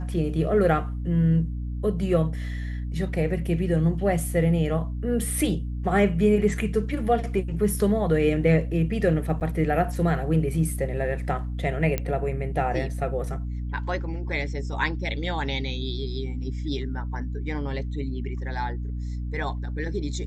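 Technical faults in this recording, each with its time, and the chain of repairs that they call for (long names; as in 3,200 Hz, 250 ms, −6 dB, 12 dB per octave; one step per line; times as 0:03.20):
mains hum 60 Hz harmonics 5 −30 dBFS
0:09.40–0:09.41: drop-out 9 ms
0:11.98: click −12 dBFS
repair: click removal
hum removal 60 Hz, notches 5
repair the gap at 0:09.40, 9 ms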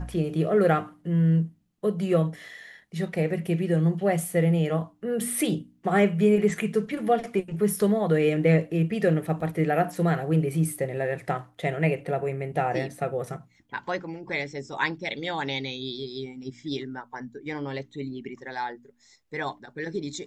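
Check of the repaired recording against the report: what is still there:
none of them is left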